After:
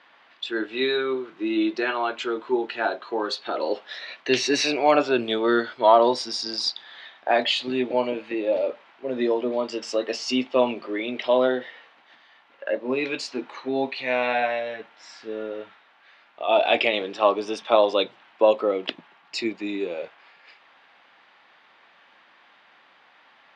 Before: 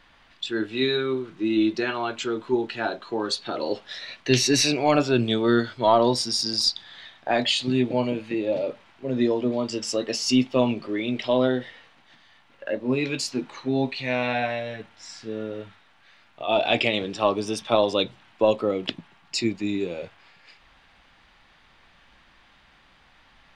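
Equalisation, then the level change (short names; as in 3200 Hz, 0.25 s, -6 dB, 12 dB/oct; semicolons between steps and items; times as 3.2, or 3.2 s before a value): HPF 410 Hz 12 dB/oct; air absorption 64 m; high shelf 5700 Hz -12 dB; +4.0 dB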